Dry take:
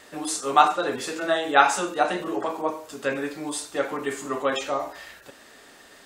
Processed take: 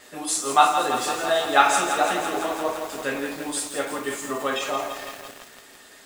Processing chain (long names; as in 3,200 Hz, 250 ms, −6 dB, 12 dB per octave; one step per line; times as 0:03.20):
on a send at −4.5 dB: spectral tilt +3.5 dB per octave + convolution reverb RT60 0.30 s, pre-delay 5 ms
on the sum: feedback echo at a low word length 167 ms, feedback 80%, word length 6 bits, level −7.5 dB
level −1.5 dB